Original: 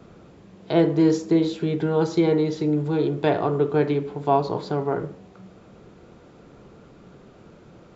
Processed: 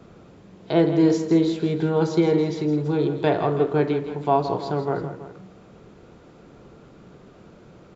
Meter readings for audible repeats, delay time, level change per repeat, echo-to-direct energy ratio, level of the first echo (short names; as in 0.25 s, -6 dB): 2, 0.164 s, -4.5 dB, -9.5 dB, -11.0 dB